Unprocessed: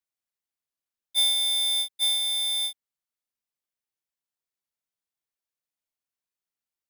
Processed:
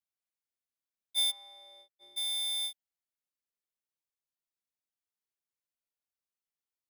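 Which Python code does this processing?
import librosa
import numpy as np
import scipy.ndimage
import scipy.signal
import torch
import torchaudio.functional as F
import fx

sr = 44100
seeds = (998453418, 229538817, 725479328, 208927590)

y = fx.bandpass_q(x, sr, hz=fx.line((1.3, 930.0), (2.16, 350.0)), q=2.6, at=(1.3, 2.16), fade=0.02)
y = y * 10.0 ** (-6.5 / 20.0)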